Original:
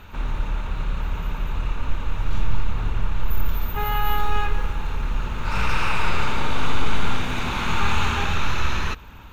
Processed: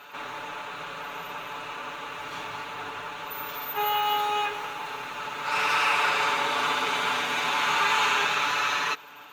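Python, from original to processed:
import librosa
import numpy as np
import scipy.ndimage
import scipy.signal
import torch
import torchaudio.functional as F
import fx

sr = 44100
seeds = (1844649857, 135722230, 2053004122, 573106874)

y = scipy.signal.sosfilt(scipy.signal.butter(2, 500.0, 'highpass', fs=sr, output='sos'), x)
y = y + 0.96 * np.pad(y, (int(6.9 * sr / 1000.0), 0))[:len(y)]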